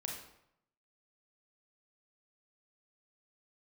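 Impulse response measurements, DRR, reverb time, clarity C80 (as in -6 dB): -0.5 dB, 0.75 s, 7.0 dB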